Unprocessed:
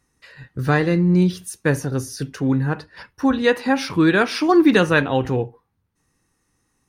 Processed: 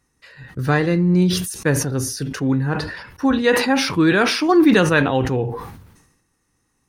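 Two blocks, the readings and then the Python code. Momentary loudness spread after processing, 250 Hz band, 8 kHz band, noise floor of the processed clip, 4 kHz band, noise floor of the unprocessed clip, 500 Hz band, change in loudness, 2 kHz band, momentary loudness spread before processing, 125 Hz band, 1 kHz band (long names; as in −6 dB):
12 LU, +1.0 dB, +7.5 dB, −69 dBFS, +4.5 dB, −70 dBFS, +0.5 dB, +1.0 dB, +1.5 dB, 12 LU, +1.0 dB, +1.0 dB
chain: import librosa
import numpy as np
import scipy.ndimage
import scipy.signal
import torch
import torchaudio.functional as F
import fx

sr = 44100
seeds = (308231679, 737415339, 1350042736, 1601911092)

y = fx.sustainer(x, sr, db_per_s=58.0)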